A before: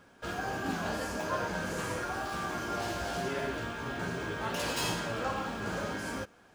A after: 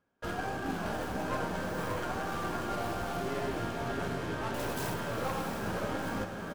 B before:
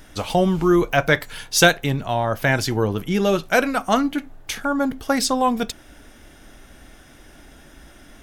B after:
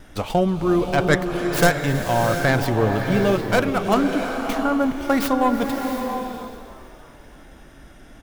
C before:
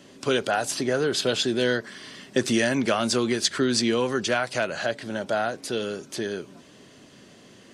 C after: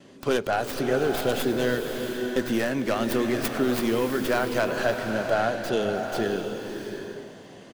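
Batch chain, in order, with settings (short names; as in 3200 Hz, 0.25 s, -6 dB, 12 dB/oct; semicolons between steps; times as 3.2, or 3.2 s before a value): tracing distortion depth 0.44 ms; gate with hold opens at -44 dBFS; high shelf 2200 Hz -6.5 dB; vocal rider within 3 dB 0.5 s; frequency-shifting echo 0.324 s, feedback 62%, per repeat +74 Hz, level -20 dB; bloom reverb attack 0.71 s, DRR 4.5 dB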